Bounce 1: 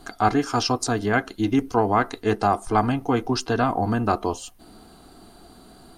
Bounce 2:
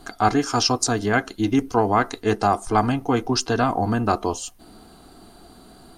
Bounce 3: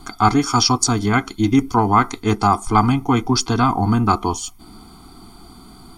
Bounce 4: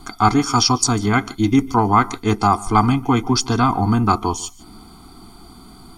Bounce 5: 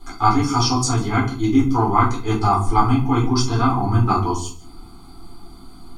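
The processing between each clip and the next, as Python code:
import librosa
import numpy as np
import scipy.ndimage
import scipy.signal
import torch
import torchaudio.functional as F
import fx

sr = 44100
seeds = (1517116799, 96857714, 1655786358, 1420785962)

y1 = fx.dynamic_eq(x, sr, hz=6400.0, q=1.2, threshold_db=-46.0, ratio=4.0, max_db=6)
y1 = y1 * 10.0 ** (1.0 / 20.0)
y2 = y1 + 1.0 * np.pad(y1, (int(0.9 * sr / 1000.0), 0))[:len(y1)]
y2 = y2 * 10.0 ** (1.5 / 20.0)
y3 = y2 + 10.0 ** (-21.5 / 20.0) * np.pad(y2, (int(146 * sr / 1000.0), 0))[:len(y2)]
y4 = fx.room_shoebox(y3, sr, seeds[0], volume_m3=220.0, walls='furnished', distance_m=4.0)
y4 = y4 * 10.0 ** (-10.5 / 20.0)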